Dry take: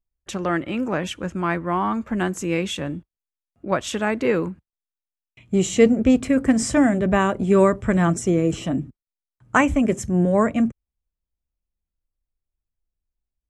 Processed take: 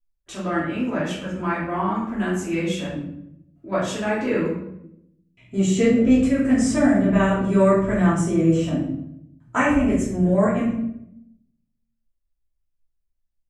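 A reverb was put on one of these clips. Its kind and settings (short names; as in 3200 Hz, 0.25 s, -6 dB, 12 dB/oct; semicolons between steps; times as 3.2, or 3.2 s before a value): shoebox room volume 180 m³, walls mixed, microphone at 2.9 m; gain -11.5 dB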